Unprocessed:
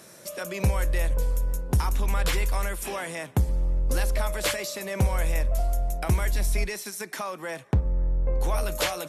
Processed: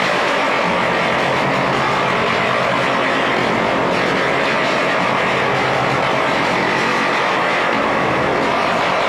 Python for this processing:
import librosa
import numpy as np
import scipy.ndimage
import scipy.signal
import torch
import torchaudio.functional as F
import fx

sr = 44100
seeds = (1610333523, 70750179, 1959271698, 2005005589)

p1 = fx.bin_compress(x, sr, power=0.2)
p2 = fx.peak_eq(p1, sr, hz=1600.0, db=6.0, octaves=2.9)
p3 = fx.notch(p2, sr, hz=1500.0, q=10.0)
p4 = fx.whisperise(p3, sr, seeds[0])
p5 = fx.chorus_voices(p4, sr, voices=2, hz=0.68, base_ms=16, depth_ms=1.8, mix_pct=50)
p6 = fx.quant_dither(p5, sr, seeds[1], bits=6, dither='triangular')
p7 = fx.bandpass_edges(p6, sr, low_hz=270.0, high_hz=3500.0)
p8 = fx.doubler(p7, sr, ms=22.0, db=-4.5)
p9 = p8 + fx.echo_wet_lowpass(p8, sr, ms=111, feedback_pct=73, hz=2000.0, wet_db=-4, dry=0)
y = fx.env_flatten(p9, sr, amount_pct=100)